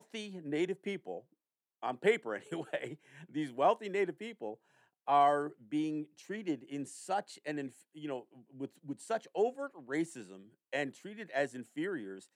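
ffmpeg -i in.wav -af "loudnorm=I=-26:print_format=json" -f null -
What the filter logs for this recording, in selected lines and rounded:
"input_i" : "-36.8",
"input_tp" : "-15.7",
"input_lra" : "4.7",
"input_thresh" : "-47.2",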